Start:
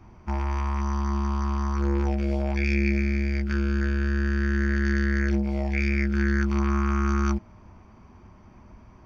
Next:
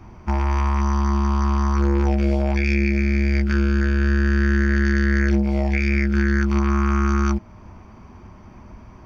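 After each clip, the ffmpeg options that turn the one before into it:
ffmpeg -i in.wav -af "alimiter=limit=-17dB:level=0:latency=1:release=365,volume=7dB" out.wav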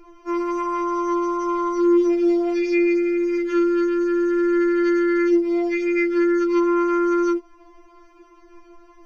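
ffmpeg -i in.wav -af "afftfilt=real='re*4*eq(mod(b,16),0)':imag='im*4*eq(mod(b,16),0)':win_size=2048:overlap=0.75" out.wav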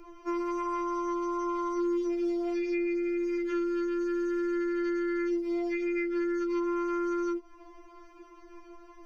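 ffmpeg -i in.wav -filter_complex "[0:a]acrossover=split=120|3100[link_01][link_02][link_03];[link_01]acompressor=threshold=-47dB:ratio=4[link_04];[link_02]acompressor=threshold=-28dB:ratio=4[link_05];[link_03]acompressor=threshold=-55dB:ratio=4[link_06];[link_04][link_05][link_06]amix=inputs=3:normalize=0,volume=-2dB" out.wav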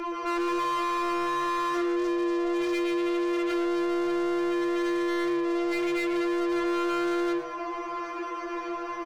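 ffmpeg -i in.wav -filter_complex "[0:a]asplit=2[link_01][link_02];[link_02]highpass=frequency=720:poles=1,volume=32dB,asoftclip=type=tanh:threshold=-22dB[link_03];[link_01][link_03]amix=inputs=2:normalize=0,lowpass=frequency=2200:poles=1,volume=-6dB,asplit=5[link_04][link_05][link_06][link_07][link_08];[link_05]adelay=114,afreqshift=140,volume=-14dB[link_09];[link_06]adelay=228,afreqshift=280,volume=-22.6dB[link_10];[link_07]adelay=342,afreqshift=420,volume=-31.3dB[link_11];[link_08]adelay=456,afreqshift=560,volume=-39.9dB[link_12];[link_04][link_09][link_10][link_11][link_12]amix=inputs=5:normalize=0" out.wav

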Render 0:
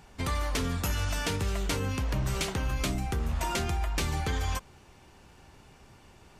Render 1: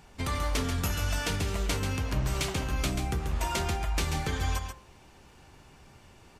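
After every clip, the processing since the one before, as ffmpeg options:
ffmpeg -i in.wav -filter_complex "[0:a]bandreject=frequency=57.9:width_type=h:width=4,bandreject=frequency=115.8:width_type=h:width=4,bandreject=frequency=173.7:width_type=h:width=4,bandreject=frequency=231.6:width_type=h:width=4,bandreject=frequency=289.5:width_type=h:width=4,bandreject=frequency=347.4:width_type=h:width=4,bandreject=frequency=405.3:width_type=h:width=4,bandreject=frequency=463.2:width_type=h:width=4,bandreject=frequency=521.1:width_type=h:width=4,bandreject=frequency=579:width_type=h:width=4,bandreject=frequency=636.9:width_type=h:width=4,bandreject=frequency=694.8:width_type=h:width=4,bandreject=frequency=752.7:width_type=h:width=4,bandreject=frequency=810.6:width_type=h:width=4,bandreject=frequency=868.5:width_type=h:width=4,bandreject=frequency=926.4:width_type=h:width=4,bandreject=frequency=984.3:width_type=h:width=4,bandreject=frequency=1042.2:width_type=h:width=4,bandreject=frequency=1100.1:width_type=h:width=4,bandreject=frequency=1158:width_type=h:width=4,bandreject=frequency=1215.9:width_type=h:width=4,bandreject=frequency=1273.8:width_type=h:width=4,bandreject=frequency=1331.7:width_type=h:width=4,bandreject=frequency=1389.6:width_type=h:width=4,bandreject=frequency=1447.5:width_type=h:width=4,bandreject=frequency=1505.4:width_type=h:width=4,bandreject=frequency=1563.3:width_type=h:width=4,bandreject=frequency=1621.2:width_type=h:width=4,bandreject=frequency=1679.1:width_type=h:width=4,bandreject=frequency=1737:width_type=h:width=4,bandreject=frequency=1794.9:width_type=h:width=4,bandreject=frequency=1852.8:width_type=h:width=4,bandreject=frequency=1910.7:width_type=h:width=4,bandreject=frequency=1968.6:width_type=h:width=4,bandreject=frequency=2026.5:width_type=h:width=4,asplit=2[link_01][link_02];[link_02]aecho=0:1:136:0.447[link_03];[link_01][link_03]amix=inputs=2:normalize=0" out.wav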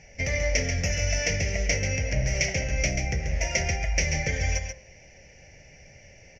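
ffmpeg -i in.wav -af "firequalizer=gain_entry='entry(160,0);entry(230,-6);entry(370,-8);entry(550,9);entry(1100,-25);entry(2000,12);entry(3800,-16);entry(5700,13);entry(8400,-28);entry(13000,-24)':delay=0.05:min_phase=1,volume=3dB" out.wav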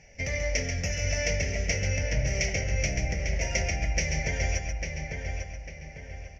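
ffmpeg -i in.wav -filter_complex "[0:a]asplit=2[link_01][link_02];[link_02]adelay=848,lowpass=frequency=3200:poles=1,volume=-4.5dB,asplit=2[link_03][link_04];[link_04]adelay=848,lowpass=frequency=3200:poles=1,volume=0.42,asplit=2[link_05][link_06];[link_06]adelay=848,lowpass=frequency=3200:poles=1,volume=0.42,asplit=2[link_07][link_08];[link_08]adelay=848,lowpass=frequency=3200:poles=1,volume=0.42,asplit=2[link_09][link_10];[link_10]adelay=848,lowpass=frequency=3200:poles=1,volume=0.42[link_11];[link_01][link_03][link_05][link_07][link_09][link_11]amix=inputs=6:normalize=0,volume=-3.5dB" out.wav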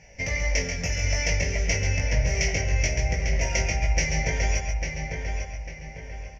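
ffmpeg -i in.wav -filter_complex "[0:a]equalizer=frequency=1000:width=6:gain=8.5,asplit=2[link_01][link_02];[link_02]adelay=18,volume=-3.5dB[link_03];[link_01][link_03]amix=inputs=2:normalize=0,volume=1.5dB" out.wav

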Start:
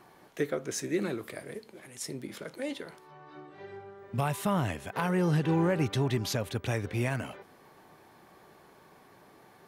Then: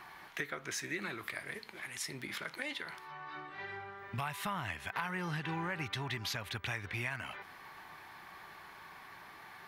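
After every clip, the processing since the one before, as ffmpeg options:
ffmpeg -i in.wav -af "equalizer=frequency=125:width_type=o:width=1:gain=-5,equalizer=frequency=250:width_type=o:width=1:gain=-7,equalizer=frequency=500:width_type=o:width=1:gain=-11,equalizer=frequency=1000:width_type=o:width=1:gain=4,equalizer=frequency=2000:width_type=o:width=1:gain=7,equalizer=frequency=4000:width_type=o:width=1:gain=3,equalizer=frequency=8000:width_type=o:width=1:gain=-5,acompressor=threshold=-42dB:ratio=3,volume=4dB" out.wav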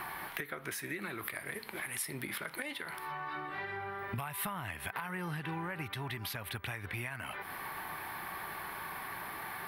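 ffmpeg -i in.wav -af "acompressor=threshold=-48dB:ratio=5,aemphasis=mode=reproduction:type=50fm,aexciter=amount=15.3:drive=5.2:freq=9500,volume=11dB" out.wav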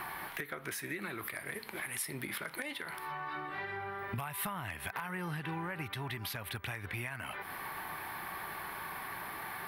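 ffmpeg -i in.wav -af "asoftclip=type=hard:threshold=-27.5dB" out.wav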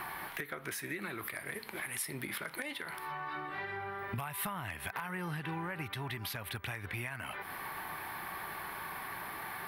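ffmpeg -i in.wav -af anull out.wav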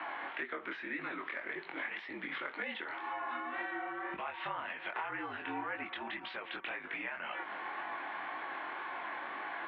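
ffmpeg -i in.wav -af "flanger=delay=19:depth=5.9:speed=1.9,highpass=frequency=320:width_type=q:width=0.5412,highpass=frequency=320:width_type=q:width=1.307,lowpass=frequency=3400:width_type=q:width=0.5176,lowpass=frequency=3400:width_type=q:width=0.7071,lowpass=frequency=3400:width_type=q:width=1.932,afreqshift=-50,volume=4.5dB" out.wav

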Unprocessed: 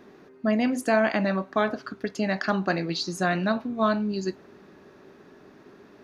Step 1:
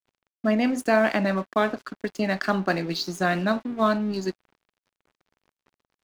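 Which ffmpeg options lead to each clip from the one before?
ffmpeg -i in.wav -af "highpass=frequency=140:width=0.5412,highpass=frequency=140:width=1.3066,aeval=exprs='sgn(val(0))*max(abs(val(0))-0.00668,0)':channel_layout=same,volume=2dB" out.wav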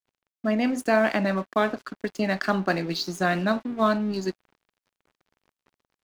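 ffmpeg -i in.wav -af "dynaudnorm=framelen=330:gausssize=3:maxgain=4dB,volume=-4dB" out.wav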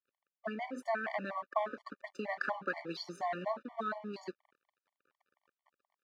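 ffmpeg -i in.wav -af "acompressor=threshold=-26dB:ratio=4,bandpass=frequency=1100:width_type=q:width=0.79:csg=0,afftfilt=real='re*gt(sin(2*PI*4.2*pts/sr)*(1-2*mod(floor(b*sr/1024/590),2)),0)':imag='im*gt(sin(2*PI*4.2*pts/sr)*(1-2*mod(floor(b*sr/1024/590),2)),0)':win_size=1024:overlap=0.75" out.wav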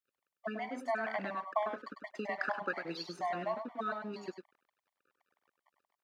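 ffmpeg -i in.wav -af "aecho=1:1:100:0.422" out.wav

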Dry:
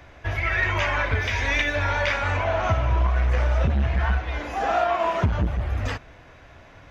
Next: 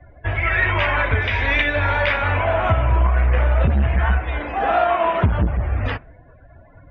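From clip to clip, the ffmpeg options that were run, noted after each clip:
ffmpeg -i in.wav -af "afftdn=noise_reduction=29:noise_floor=-44,lowpass=frequency=3700:width=0.5412,lowpass=frequency=3700:width=1.3066,volume=4.5dB" out.wav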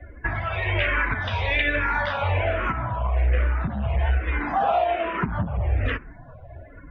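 ffmpeg -i in.wav -filter_complex "[0:a]acompressor=threshold=-25dB:ratio=4,asplit=2[link_01][link_02];[link_02]afreqshift=-1.2[link_03];[link_01][link_03]amix=inputs=2:normalize=1,volume=6.5dB" out.wav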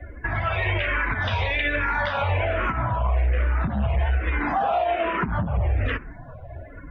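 ffmpeg -i in.wav -af "alimiter=limit=-18.5dB:level=0:latency=1:release=92,volume=3.5dB" out.wav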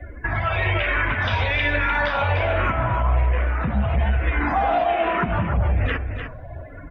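ffmpeg -i in.wav -af "aecho=1:1:301:0.398,volume=2dB" out.wav

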